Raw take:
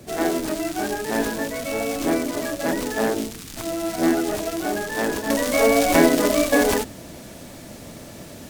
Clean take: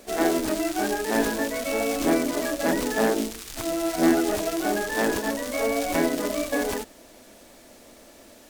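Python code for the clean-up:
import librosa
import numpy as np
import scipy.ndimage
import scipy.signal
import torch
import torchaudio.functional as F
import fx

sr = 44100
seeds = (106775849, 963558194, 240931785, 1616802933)

y = fx.noise_reduce(x, sr, print_start_s=7.19, print_end_s=7.69, reduce_db=10.0)
y = fx.gain(y, sr, db=fx.steps((0.0, 0.0), (5.3, -8.0)))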